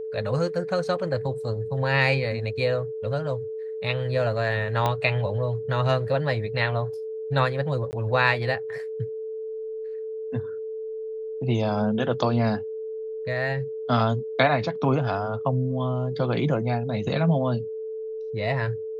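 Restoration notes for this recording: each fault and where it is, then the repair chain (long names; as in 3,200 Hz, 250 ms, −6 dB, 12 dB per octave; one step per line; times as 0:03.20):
whistle 440 Hz −30 dBFS
0:04.86: click −11 dBFS
0:07.91–0:07.93: drop-out 19 ms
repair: click removal
notch filter 440 Hz, Q 30
repair the gap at 0:07.91, 19 ms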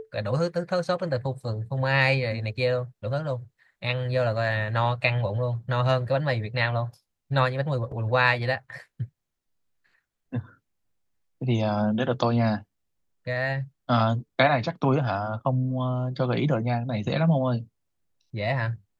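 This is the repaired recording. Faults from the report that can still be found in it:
0:04.86: click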